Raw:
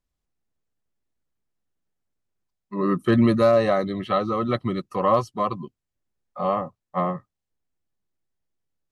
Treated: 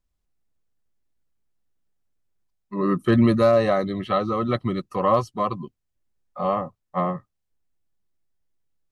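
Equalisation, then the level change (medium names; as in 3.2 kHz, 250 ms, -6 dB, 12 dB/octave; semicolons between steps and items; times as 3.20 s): bass shelf 61 Hz +7.5 dB; 0.0 dB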